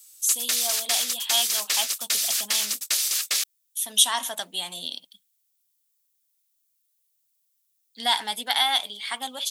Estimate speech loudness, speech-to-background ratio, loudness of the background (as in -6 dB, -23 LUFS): -26.0 LUFS, -2.5 dB, -23.5 LUFS